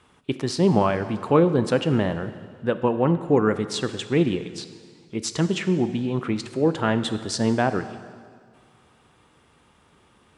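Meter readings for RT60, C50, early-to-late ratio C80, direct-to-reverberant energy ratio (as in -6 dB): 1.9 s, 12.0 dB, 13.0 dB, 11.0 dB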